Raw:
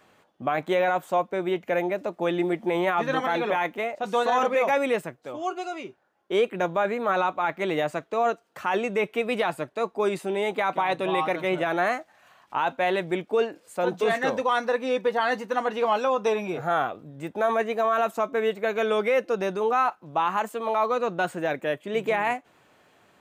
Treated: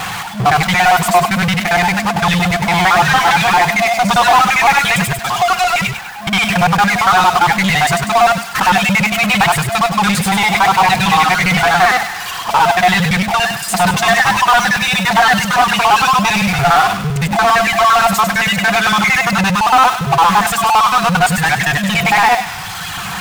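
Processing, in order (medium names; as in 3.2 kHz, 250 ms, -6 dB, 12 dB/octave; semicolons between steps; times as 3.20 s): time reversed locally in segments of 57 ms; reverb removal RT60 0.98 s; FFT band-reject 210–680 Hz; in parallel at -5.5 dB: bit crusher 4-bit; on the sum: power-law waveshaper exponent 0.35; on a send: feedback echo behind a high-pass 99 ms, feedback 48%, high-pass 1.4 kHz, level -8 dB; on the sum: slew-rate limiter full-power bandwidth 440 Hz; trim +7.5 dB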